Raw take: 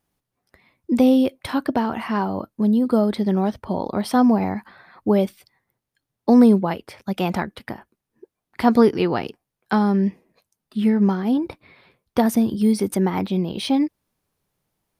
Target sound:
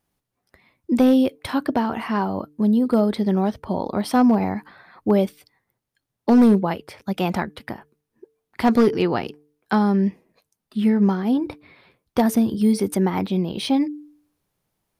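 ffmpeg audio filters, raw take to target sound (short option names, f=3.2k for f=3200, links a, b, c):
-af "volume=9.5dB,asoftclip=hard,volume=-9.5dB,bandreject=f=148.4:t=h:w=4,bandreject=f=296.8:t=h:w=4,bandreject=f=445.2:t=h:w=4"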